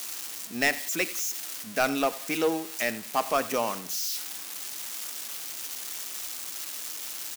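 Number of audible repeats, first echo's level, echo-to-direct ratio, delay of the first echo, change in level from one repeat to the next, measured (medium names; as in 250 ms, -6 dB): 2, -18.0 dB, -17.5 dB, 90 ms, -9.5 dB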